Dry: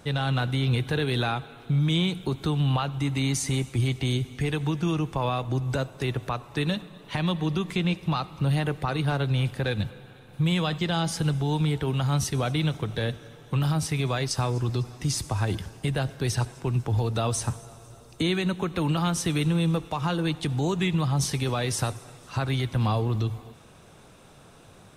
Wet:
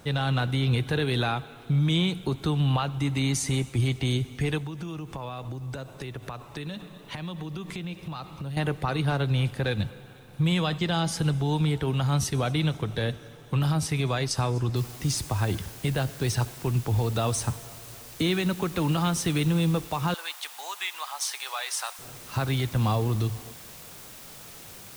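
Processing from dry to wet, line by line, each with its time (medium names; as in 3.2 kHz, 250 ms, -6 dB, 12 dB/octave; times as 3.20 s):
4.58–8.57 s: compression, threshold -32 dBFS
14.76 s: noise floor step -67 dB -46 dB
20.14–21.99 s: high-pass 810 Hz 24 dB/octave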